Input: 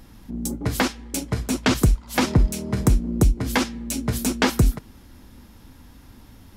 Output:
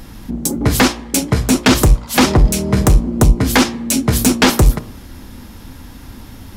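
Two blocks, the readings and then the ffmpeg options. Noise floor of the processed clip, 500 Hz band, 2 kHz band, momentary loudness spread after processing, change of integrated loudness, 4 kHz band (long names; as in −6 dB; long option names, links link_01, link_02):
−36 dBFS, +9.5 dB, +9.0 dB, 6 LU, +8.5 dB, +10.5 dB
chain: -af "aeval=exprs='0.447*sin(PI/2*2*val(0)/0.447)':channel_layout=same,bandreject=frequency=58.8:width_type=h:width=4,bandreject=frequency=117.6:width_type=h:width=4,bandreject=frequency=176.4:width_type=h:width=4,bandreject=frequency=235.2:width_type=h:width=4,bandreject=frequency=294:width_type=h:width=4,bandreject=frequency=352.8:width_type=h:width=4,bandreject=frequency=411.6:width_type=h:width=4,bandreject=frequency=470.4:width_type=h:width=4,bandreject=frequency=529.2:width_type=h:width=4,bandreject=frequency=588:width_type=h:width=4,bandreject=frequency=646.8:width_type=h:width=4,bandreject=frequency=705.6:width_type=h:width=4,bandreject=frequency=764.4:width_type=h:width=4,bandreject=frequency=823.2:width_type=h:width=4,bandreject=frequency=882:width_type=h:width=4,bandreject=frequency=940.8:width_type=h:width=4,bandreject=frequency=999.6:width_type=h:width=4,bandreject=frequency=1058.4:width_type=h:width=4,bandreject=frequency=1117.2:width_type=h:width=4,bandreject=frequency=1176:width_type=h:width=4,bandreject=frequency=1234.8:width_type=h:width=4,volume=2.5dB"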